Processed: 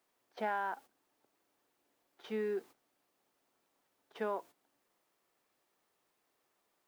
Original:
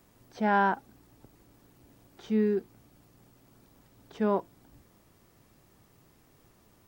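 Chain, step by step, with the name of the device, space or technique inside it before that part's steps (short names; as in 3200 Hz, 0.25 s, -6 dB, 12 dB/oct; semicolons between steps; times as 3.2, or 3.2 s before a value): baby monitor (BPF 500–3900 Hz; compressor 12:1, threshold -33 dBFS, peak gain reduction 12.5 dB; white noise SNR 25 dB; gate -53 dBFS, range -14 dB); gain +1 dB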